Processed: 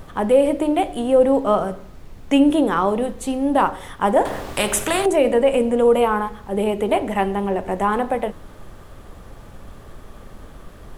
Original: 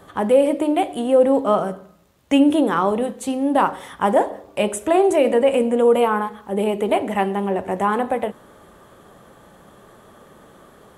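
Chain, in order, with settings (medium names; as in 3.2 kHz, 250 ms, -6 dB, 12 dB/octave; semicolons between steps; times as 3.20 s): added noise brown -38 dBFS; 4.25–5.06 s: spectrum-flattening compressor 2:1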